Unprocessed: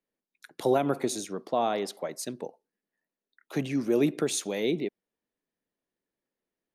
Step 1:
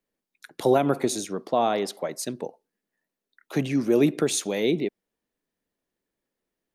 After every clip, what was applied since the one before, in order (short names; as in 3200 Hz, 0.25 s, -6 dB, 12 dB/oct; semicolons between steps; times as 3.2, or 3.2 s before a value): low shelf 65 Hz +7 dB; gain +4 dB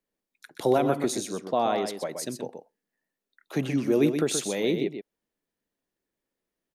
echo 0.126 s -7.5 dB; gain -2.5 dB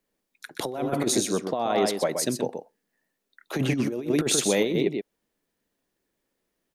negative-ratio compressor -27 dBFS, ratio -0.5; gain +4 dB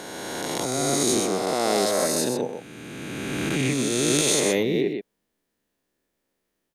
spectral swells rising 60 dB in 2.82 s; gain -3 dB